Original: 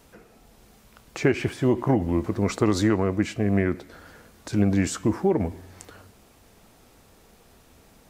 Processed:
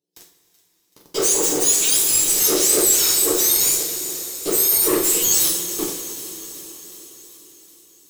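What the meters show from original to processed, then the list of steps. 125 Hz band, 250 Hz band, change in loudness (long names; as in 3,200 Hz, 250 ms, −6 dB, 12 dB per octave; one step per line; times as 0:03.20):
−16.0 dB, −5.5 dB, +8.5 dB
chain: frequency axis turned over on the octave scale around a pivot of 1,600 Hz
noise gate with hold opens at −41 dBFS
high-pass filter 110 Hz 12 dB per octave
flat-topped bell 1,200 Hz −12.5 dB 2.4 octaves
flanger 1.4 Hz, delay 6.2 ms, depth 10 ms, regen −76%
phaser with its sweep stopped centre 550 Hz, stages 4
in parallel at −8 dB: fuzz pedal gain 50 dB, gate −58 dBFS
on the sum: delay with a high-pass on its return 379 ms, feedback 63%, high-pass 2,100 Hz, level −15 dB
coupled-rooms reverb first 0.39 s, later 4.9 s, from −17 dB, DRR −1.5 dB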